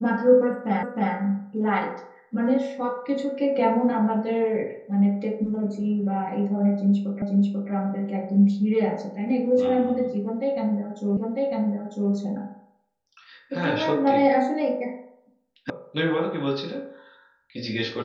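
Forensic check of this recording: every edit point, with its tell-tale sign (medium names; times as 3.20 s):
0.83 s: repeat of the last 0.31 s
7.22 s: repeat of the last 0.49 s
11.17 s: repeat of the last 0.95 s
15.70 s: sound stops dead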